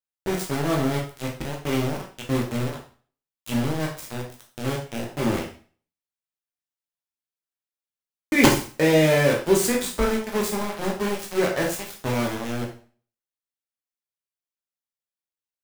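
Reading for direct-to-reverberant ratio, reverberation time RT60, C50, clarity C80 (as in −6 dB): −1.0 dB, 0.40 s, 7.0 dB, 11.5 dB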